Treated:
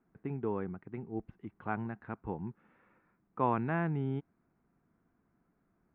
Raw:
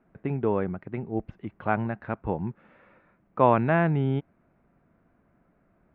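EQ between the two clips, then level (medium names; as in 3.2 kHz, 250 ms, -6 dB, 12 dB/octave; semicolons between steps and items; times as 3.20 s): bass shelf 160 Hz -5.5 dB; peaking EQ 590 Hz -10.5 dB 0.45 oct; treble shelf 2.4 kHz -11 dB; -6.0 dB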